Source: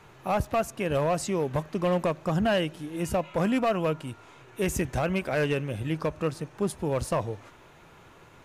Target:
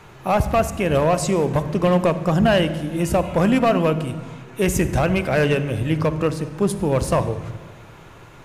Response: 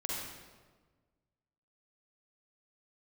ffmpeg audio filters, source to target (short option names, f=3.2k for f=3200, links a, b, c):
-filter_complex "[0:a]asplit=2[a][b];[1:a]atrim=start_sample=2205,lowshelf=f=210:g=11[c];[b][c]afir=irnorm=-1:irlink=0,volume=-13.5dB[d];[a][d]amix=inputs=2:normalize=0,volume=6dB"